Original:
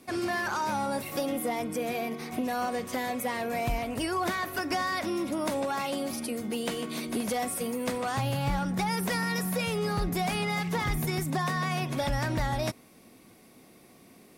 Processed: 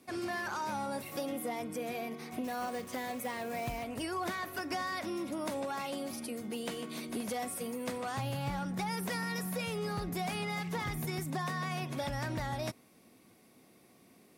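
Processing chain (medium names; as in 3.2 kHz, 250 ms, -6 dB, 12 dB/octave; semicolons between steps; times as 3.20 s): high-pass 63 Hz; 2.44–3.84 s: short-mantissa float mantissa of 2-bit; trim -6.5 dB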